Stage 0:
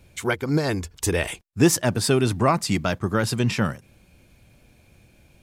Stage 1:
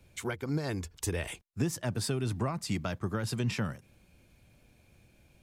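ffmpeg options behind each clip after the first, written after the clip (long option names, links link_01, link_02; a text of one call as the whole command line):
ffmpeg -i in.wav -filter_complex "[0:a]acrossover=split=160[link_01][link_02];[link_02]acompressor=threshold=-24dB:ratio=10[link_03];[link_01][link_03]amix=inputs=2:normalize=0,volume=-7dB" out.wav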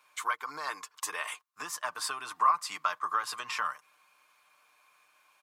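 ffmpeg -i in.wav -af "highpass=frequency=1100:width_type=q:width=8.5,aecho=1:1:6.6:0.45" out.wav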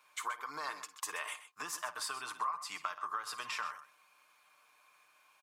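ffmpeg -i in.wav -filter_complex "[0:a]acompressor=threshold=-35dB:ratio=3,asplit=2[link_01][link_02];[link_02]aecho=0:1:54|128:0.168|0.211[link_03];[link_01][link_03]amix=inputs=2:normalize=0,volume=-1.5dB" out.wav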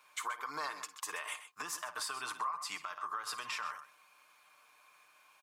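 ffmpeg -i in.wav -af "alimiter=level_in=6dB:limit=-24dB:level=0:latency=1:release=133,volume=-6dB,volume=2.5dB" out.wav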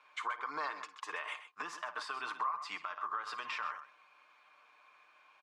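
ffmpeg -i in.wav -af "highpass=200,lowpass=3200,volume=1.5dB" out.wav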